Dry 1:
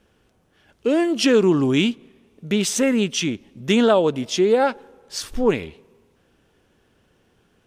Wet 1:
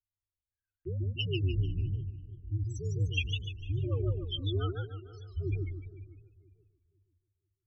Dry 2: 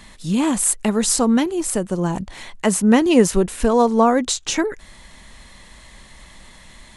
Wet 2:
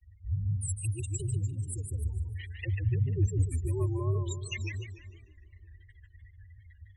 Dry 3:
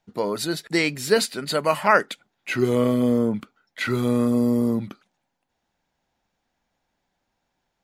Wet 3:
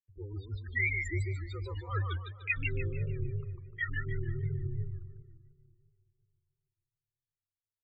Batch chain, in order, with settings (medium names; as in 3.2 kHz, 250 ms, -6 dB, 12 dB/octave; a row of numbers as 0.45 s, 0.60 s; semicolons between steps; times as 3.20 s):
partial rectifier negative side -12 dB; spectral gate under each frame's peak -10 dB strong; gate -50 dBFS, range -26 dB; FFT filter 190 Hz 0 dB, 320 Hz -26 dB, 480 Hz -9 dB, 890 Hz -26 dB, 2 kHz +7 dB, 3 kHz +13 dB, 4.6 kHz -19 dB, 7.9 kHz +5 dB; frequency shift -100 Hz; on a send: filtered feedback delay 495 ms, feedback 27%, low-pass 1.1 kHz, level -17.5 dB; on the sum: modulated delay 149 ms, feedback 38%, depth 189 cents, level -4.5 dB; trim -5 dB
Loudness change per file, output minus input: -14.5 LU, -14.0 LU, -13.0 LU